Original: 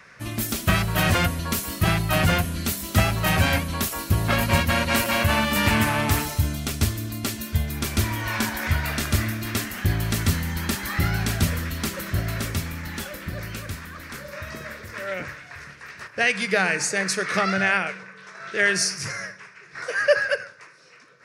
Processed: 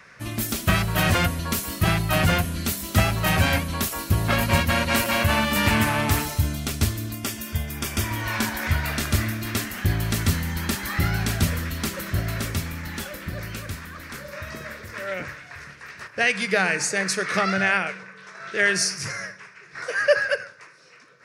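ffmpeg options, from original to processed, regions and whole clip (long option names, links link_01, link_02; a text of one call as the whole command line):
ffmpeg -i in.wav -filter_complex "[0:a]asettb=1/sr,asplit=3[link_01][link_02][link_03];[link_01]atrim=end=7.144[link_04];[link_02]atrim=start=7.14:end=8.11,asetpts=PTS-STARTPTS,afade=type=in:duration=0.004:curve=qsin,afade=type=out:start_time=0.966:duration=0.004:curve=qsin,asuperstop=centerf=4100:order=4:qfactor=7.1,acompressor=mode=upward:threshold=-28dB:ratio=2.5:attack=3.2:release=140:knee=2.83:detection=peak,lowshelf=frequency=430:gain=-4[link_05];[link_03]atrim=start=8.106[link_06];[link_04][link_05]acrossfade=duration=0.004:curve1=hsin:curve2=qsin[link_07];[link_07][link_06]acrossfade=duration=0.004:curve1=qsin:curve2=hsin" out.wav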